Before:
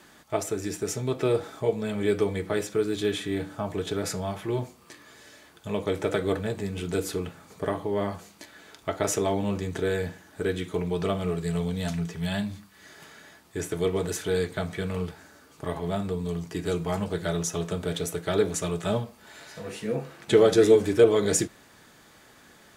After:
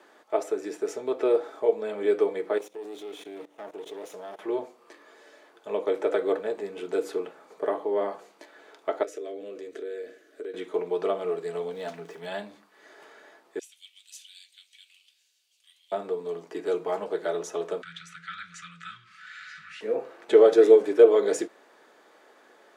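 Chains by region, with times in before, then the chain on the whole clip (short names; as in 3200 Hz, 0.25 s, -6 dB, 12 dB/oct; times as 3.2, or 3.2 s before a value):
2.58–4.39 minimum comb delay 0.31 ms + high shelf 6200 Hz +9.5 dB + level quantiser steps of 19 dB
9.03–10.54 fixed phaser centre 370 Hz, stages 4 + compressor, threshold -34 dBFS
11.71–12.21 switching spikes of -36 dBFS + high shelf 7200 Hz -7 dB
13.59–15.92 elliptic high-pass 2800 Hz, stop band 80 dB + companded quantiser 8-bit
17.82–19.81 Chebyshev band-stop 170–1300 Hz, order 5 + air absorption 100 m + fast leveller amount 50%
whole clip: HPF 410 Hz 24 dB/oct; tilt -4 dB/oct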